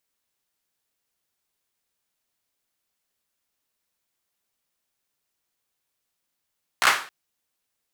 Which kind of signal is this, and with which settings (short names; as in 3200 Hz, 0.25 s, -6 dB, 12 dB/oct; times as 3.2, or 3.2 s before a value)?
hand clap length 0.27 s, apart 16 ms, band 1400 Hz, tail 0.40 s